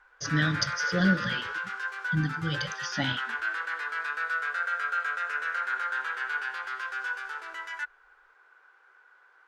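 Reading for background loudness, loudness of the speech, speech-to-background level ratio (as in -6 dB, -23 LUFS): -31.5 LUFS, -30.0 LUFS, 1.5 dB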